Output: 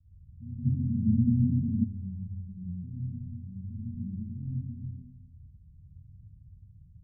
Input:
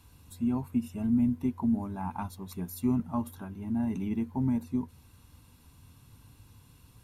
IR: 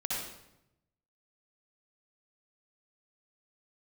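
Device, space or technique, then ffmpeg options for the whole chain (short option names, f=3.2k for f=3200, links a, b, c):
club heard from the street: -filter_complex "[0:a]alimiter=level_in=0.5dB:limit=-24dB:level=0:latency=1,volume=-0.5dB,lowpass=f=150:w=0.5412,lowpass=f=150:w=1.3066[a];[1:a]atrim=start_sample=2205[b];[a][b]afir=irnorm=-1:irlink=0,asplit=3[c][d][e];[c]afade=t=out:st=0.65:d=0.02[f];[d]equalizer=f=240:w=0.35:g=14.5,afade=t=in:st=0.65:d=0.02,afade=t=out:st=1.83:d=0.02[g];[e]afade=t=in:st=1.83:d=0.02[h];[f][g][h]amix=inputs=3:normalize=0"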